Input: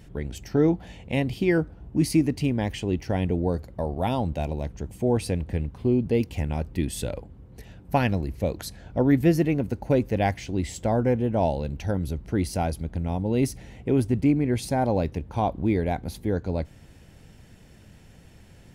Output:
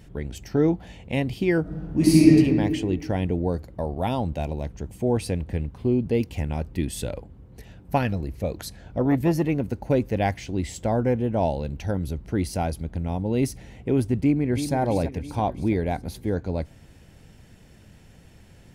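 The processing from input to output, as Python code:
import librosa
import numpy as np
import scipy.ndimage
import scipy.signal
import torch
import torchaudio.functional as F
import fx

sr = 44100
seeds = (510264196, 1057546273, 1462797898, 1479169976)

y = fx.reverb_throw(x, sr, start_s=1.61, length_s=0.76, rt60_s=1.8, drr_db=-6.5)
y = fx.transformer_sat(y, sr, knee_hz=310.0, at=(7.98, 9.49))
y = fx.echo_throw(y, sr, start_s=14.17, length_s=0.58, ms=330, feedback_pct=55, wet_db=-9.0)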